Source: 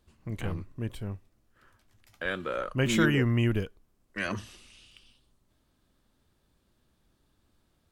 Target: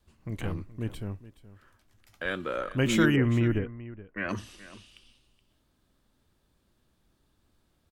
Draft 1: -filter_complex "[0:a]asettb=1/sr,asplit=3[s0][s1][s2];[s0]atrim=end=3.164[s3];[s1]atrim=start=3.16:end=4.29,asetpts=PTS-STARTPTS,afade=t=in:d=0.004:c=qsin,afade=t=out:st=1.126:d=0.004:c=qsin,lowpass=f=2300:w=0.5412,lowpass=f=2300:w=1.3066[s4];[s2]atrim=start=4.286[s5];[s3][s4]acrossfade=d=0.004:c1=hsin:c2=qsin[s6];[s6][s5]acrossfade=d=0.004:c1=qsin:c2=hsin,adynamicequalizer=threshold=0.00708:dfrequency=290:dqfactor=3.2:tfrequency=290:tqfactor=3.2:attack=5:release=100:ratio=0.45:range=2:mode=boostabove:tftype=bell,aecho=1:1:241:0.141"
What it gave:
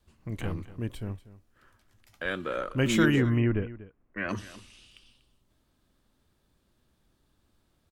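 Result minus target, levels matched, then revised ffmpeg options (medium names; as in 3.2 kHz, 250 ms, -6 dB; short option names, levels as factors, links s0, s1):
echo 182 ms early
-filter_complex "[0:a]asettb=1/sr,asplit=3[s0][s1][s2];[s0]atrim=end=3.164[s3];[s1]atrim=start=3.16:end=4.29,asetpts=PTS-STARTPTS,afade=t=in:d=0.004:c=qsin,afade=t=out:st=1.126:d=0.004:c=qsin,lowpass=f=2300:w=0.5412,lowpass=f=2300:w=1.3066[s4];[s2]atrim=start=4.286[s5];[s3][s4]acrossfade=d=0.004:c1=hsin:c2=qsin[s6];[s6][s5]acrossfade=d=0.004:c1=qsin:c2=hsin,adynamicequalizer=threshold=0.00708:dfrequency=290:dqfactor=3.2:tfrequency=290:tqfactor=3.2:attack=5:release=100:ratio=0.45:range=2:mode=boostabove:tftype=bell,aecho=1:1:423:0.141"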